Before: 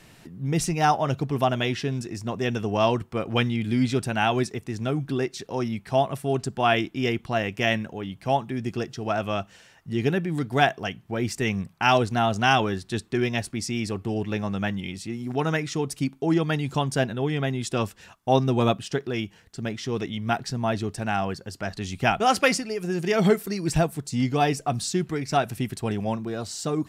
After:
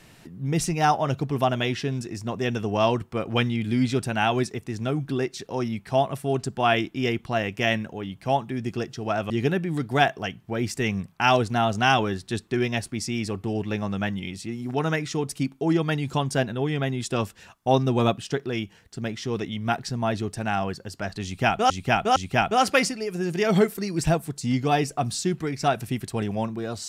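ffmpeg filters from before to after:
ffmpeg -i in.wav -filter_complex "[0:a]asplit=4[link_01][link_02][link_03][link_04];[link_01]atrim=end=9.302[link_05];[link_02]atrim=start=9.908:end=22.312[link_06];[link_03]atrim=start=21.848:end=22.312[link_07];[link_04]atrim=start=21.848[link_08];[link_05][link_06]acrossfade=duration=0.004:curve1=hsin:curve2=hsin[link_09];[link_09][link_07]acrossfade=duration=0.004:curve1=hsin:curve2=hsin[link_10];[link_10][link_08]acrossfade=duration=0.004:curve1=hsin:curve2=hsin" out.wav

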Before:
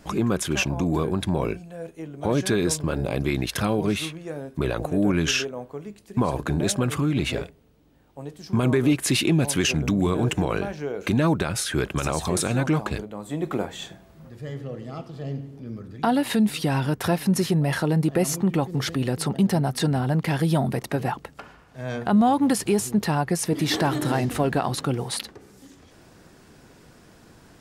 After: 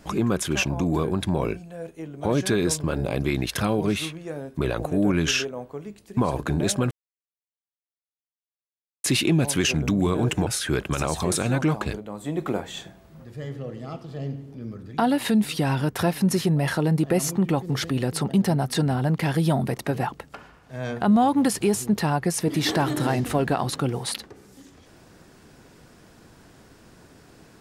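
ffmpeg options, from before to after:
ffmpeg -i in.wav -filter_complex "[0:a]asplit=4[link_01][link_02][link_03][link_04];[link_01]atrim=end=6.91,asetpts=PTS-STARTPTS,afade=type=out:start_time=6.906:duration=0.004:curve=hsin[link_05];[link_02]atrim=start=6.91:end=9.04,asetpts=PTS-STARTPTS,volume=0[link_06];[link_03]atrim=start=9.04:end=10.472,asetpts=PTS-STARTPTS,afade=type=in:duration=0.004:curve=hsin[link_07];[link_04]atrim=start=11.518[link_08];[link_05][link_06][link_07]concat=n=3:v=0:a=1[link_09];[link_09][link_08]acrossfade=duration=0.004:curve1=hsin:curve2=hsin" out.wav

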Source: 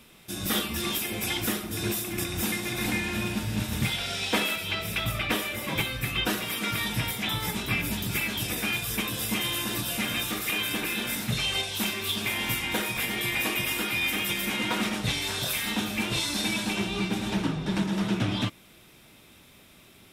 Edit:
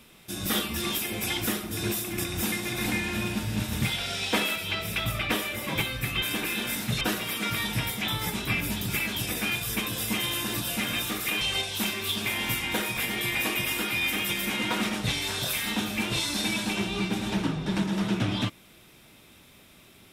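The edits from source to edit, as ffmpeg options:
ffmpeg -i in.wav -filter_complex "[0:a]asplit=4[link_01][link_02][link_03][link_04];[link_01]atrim=end=6.222[link_05];[link_02]atrim=start=10.618:end=11.412[link_06];[link_03]atrim=start=6.218:end=10.622[link_07];[link_04]atrim=start=11.408[link_08];[link_05][link_06]acrossfade=duration=0.004:curve1=hsin:curve2=hsin[link_09];[link_09][link_07]acrossfade=duration=0.004:curve1=hsin:curve2=hsin[link_10];[link_10][link_08]acrossfade=duration=0.004:curve1=hsin:curve2=hsin" out.wav

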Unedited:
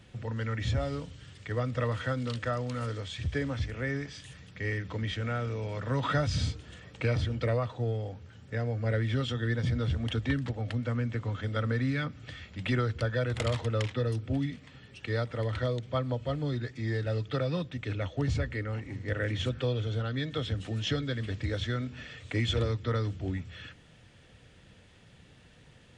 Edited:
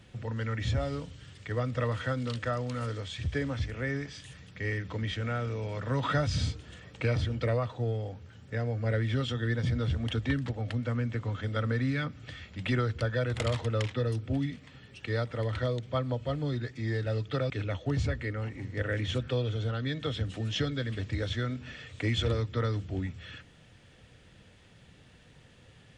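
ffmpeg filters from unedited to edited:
ffmpeg -i in.wav -filter_complex "[0:a]asplit=2[link_01][link_02];[link_01]atrim=end=17.502[link_03];[link_02]atrim=start=17.808[link_04];[link_03][link_04]acrossfade=duration=0.004:curve1=hsin:curve2=hsin" out.wav

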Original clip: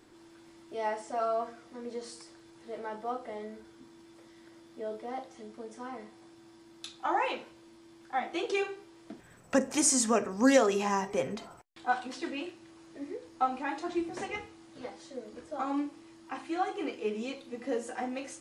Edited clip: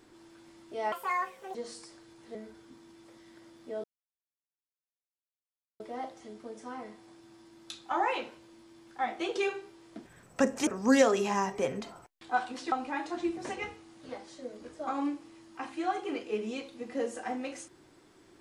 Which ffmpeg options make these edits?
ffmpeg -i in.wav -filter_complex "[0:a]asplit=7[link_01][link_02][link_03][link_04][link_05][link_06][link_07];[link_01]atrim=end=0.924[link_08];[link_02]atrim=start=0.92:end=1.92,asetpts=PTS-STARTPTS,asetrate=70119,aresample=44100[link_09];[link_03]atrim=start=1.916:end=2.722[link_10];[link_04]atrim=start=3.448:end=4.94,asetpts=PTS-STARTPTS,afade=type=out:start_time=1.488:duration=0.004:curve=hsin,apad=pad_dur=1.96[link_11];[link_05]atrim=start=4.94:end=9.812,asetpts=PTS-STARTPTS,afade=type=in:duration=0.004:curve=hsin[link_12];[link_06]atrim=start=10.218:end=12.272[link_13];[link_07]atrim=start=13.438[link_14];[link_08][link_09]acrossfade=duration=0.004:curve1=hsin:curve2=hsin[link_15];[link_15][link_10]acrossfade=duration=0.004:curve1=hsin:curve2=hsin[link_16];[link_11][link_12]concat=n=2:v=0:a=1[link_17];[link_16][link_17]acrossfade=duration=0.004:curve1=hsin:curve2=hsin[link_18];[link_18][link_13]acrossfade=duration=0.004:curve1=hsin:curve2=hsin[link_19];[link_19][link_14]acrossfade=duration=0.004:curve1=hsin:curve2=hsin" out.wav

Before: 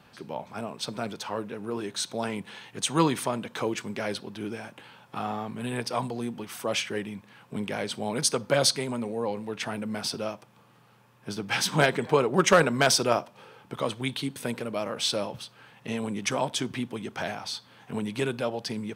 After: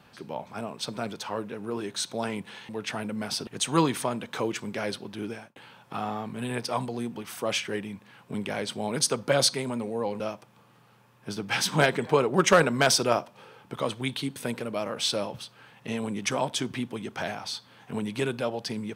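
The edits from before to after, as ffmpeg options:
ffmpeg -i in.wav -filter_complex "[0:a]asplit=5[link_01][link_02][link_03][link_04][link_05];[link_01]atrim=end=2.692[link_06];[link_02]atrim=start=9.418:end=10.202[link_07];[link_03]atrim=start=2.688:end=4.78,asetpts=PTS-STARTPTS,afade=type=out:start_time=1.842:duration=0.25[link_08];[link_04]atrim=start=4.78:end=9.422,asetpts=PTS-STARTPTS,afade=type=in:duration=0.004:curve=hsin[link_09];[link_05]atrim=start=10.198[link_10];[link_06][link_07]acrossfade=duration=0.004:curve1=hsin:curve2=hsin[link_11];[link_08][link_09]concat=n=2:v=0:a=1[link_12];[link_11][link_12]acrossfade=duration=0.004:curve1=hsin:curve2=hsin[link_13];[link_13][link_10]acrossfade=duration=0.004:curve1=hsin:curve2=hsin" out.wav

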